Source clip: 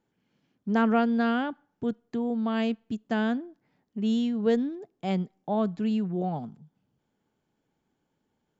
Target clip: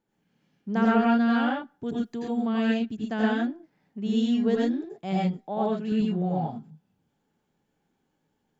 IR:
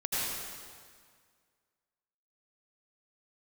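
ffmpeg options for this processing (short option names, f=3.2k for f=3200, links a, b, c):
-filter_complex "[0:a]asettb=1/sr,asplit=3[a][b][c];[a]atrim=end=1.864[d];[b]atrim=start=1.86:end=2.33,asetpts=PTS-STARTPTS,afade=t=in:d=0.004:c=qsin,afade=t=out:st=0.466:d=0.004:c=qsin,highshelf=f=4.3k:g=11[e];[c]atrim=start=2.326[f];[d][e]acrossfade=d=0.004:c1=hsin:c2=qsin[g];[g][f]acrossfade=d=0.004:c1=qsin:c2=hsin,asettb=1/sr,asplit=3[h][i][j];[h]atrim=end=5.364[k];[i]atrim=start=5.36:end=5.92,asetpts=PTS-STARTPTS,afade=t=in:d=0.004:c=qsin,afade=t=out:st=0.556:d=0.004:c=qsin,highpass=230[l];[j]atrim=start=5.916[m];[k][l]acrossfade=d=0.004:c1=hsin:c2=qsin[n];[n][m]acrossfade=d=0.004:c1=qsin:c2=hsin[o];[1:a]atrim=start_sample=2205,atrim=end_sample=6174[p];[o][p]afir=irnorm=-1:irlink=0,volume=-2dB"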